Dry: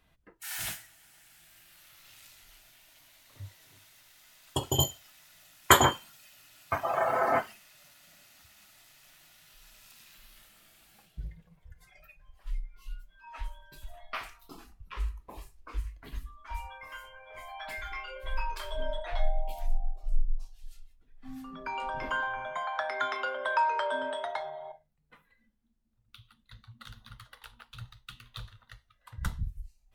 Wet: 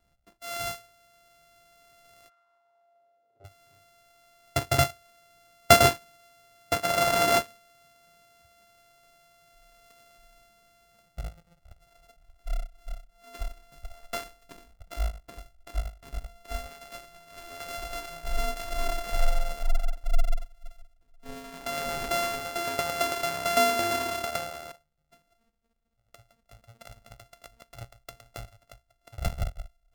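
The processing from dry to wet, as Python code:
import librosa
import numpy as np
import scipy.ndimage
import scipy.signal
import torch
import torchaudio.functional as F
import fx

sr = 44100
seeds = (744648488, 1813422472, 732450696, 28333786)

y = np.r_[np.sort(x[:len(x) // 64 * 64].reshape(-1, 64), axis=1).ravel(), x[len(x) // 64 * 64:]]
y = fx.leveller(y, sr, passes=1)
y = fx.bandpass_q(y, sr, hz=fx.line((2.28, 1300.0), (3.44, 430.0)), q=2.7, at=(2.28, 3.44), fade=0.02)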